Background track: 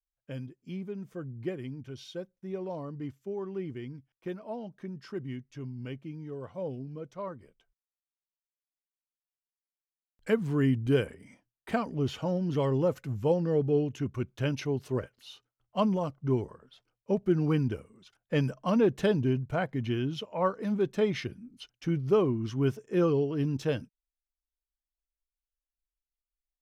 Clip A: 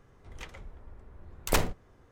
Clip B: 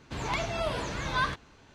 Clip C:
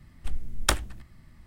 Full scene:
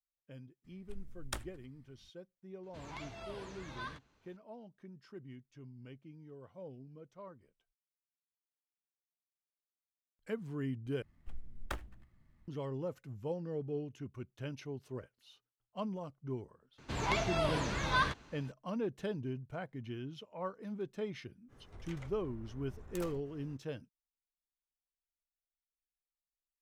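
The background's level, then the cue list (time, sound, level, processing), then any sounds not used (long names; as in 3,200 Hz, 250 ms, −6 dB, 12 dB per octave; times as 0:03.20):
background track −12.5 dB
0:00.64: mix in C −17 dB
0:02.63: mix in B −16 dB
0:11.02: overwrite with C −14.5 dB + running median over 9 samples
0:16.78: mix in B −2 dB
0:21.48: mix in A −1 dB, fades 0.05 s + downward compressor, threshold −44 dBFS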